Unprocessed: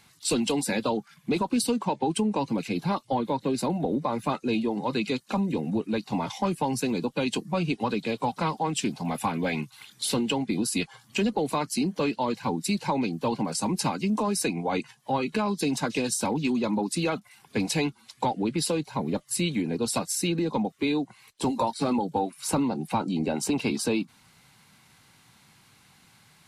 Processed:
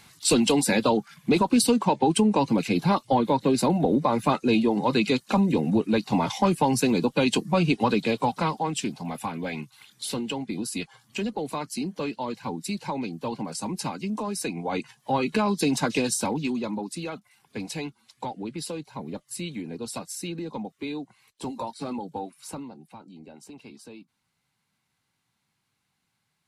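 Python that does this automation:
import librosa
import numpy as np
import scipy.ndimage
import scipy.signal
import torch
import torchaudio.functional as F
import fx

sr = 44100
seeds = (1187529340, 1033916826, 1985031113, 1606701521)

y = fx.gain(x, sr, db=fx.line((8.0, 5.0), (9.2, -4.0), (14.35, -4.0), (15.28, 3.0), (15.97, 3.0), (17.04, -7.0), (22.32, -7.0), (22.93, -19.0)))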